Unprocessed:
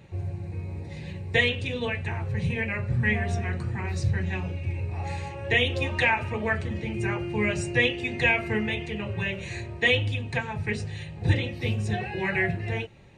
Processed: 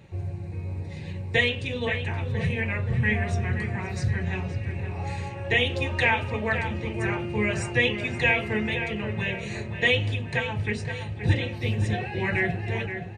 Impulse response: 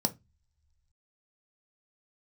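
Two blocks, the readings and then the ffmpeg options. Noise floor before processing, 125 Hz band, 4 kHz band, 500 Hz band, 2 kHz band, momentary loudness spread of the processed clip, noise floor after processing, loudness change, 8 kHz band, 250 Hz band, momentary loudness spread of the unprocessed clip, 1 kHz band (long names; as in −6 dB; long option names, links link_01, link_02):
−39 dBFS, +1.0 dB, +0.5 dB, +0.5 dB, +0.5 dB, 10 LU, −36 dBFS, +0.5 dB, 0.0 dB, +0.5 dB, 11 LU, +0.5 dB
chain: -filter_complex "[0:a]asplit=2[link_01][link_02];[link_02]adelay=523,lowpass=frequency=2800:poles=1,volume=-8dB,asplit=2[link_03][link_04];[link_04]adelay=523,lowpass=frequency=2800:poles=1,volume=0.54,asplit=2[link_05][link_06];[link_06]adelay=523,lowpass=frequency=2800:poles=1,volume=0.54,asplit=2[link_07][link_08];[link_08]adelay=523,lowpass=frequency=2800:poles=1,volume=0.54,asplit=2[link_09][link_10];[link_10]adelay=523,lowpass=frequency=2800:poles=1,volume=0.54,asplit=2[link_11][link_12];[link_12]adelay=523,lowpass=frequency=2800:poles=1,volume=0.54[link_13];[link_01][link_03][link_05][link_07][link_09][link_11][link_13]amix=inputs=7:normalize=0"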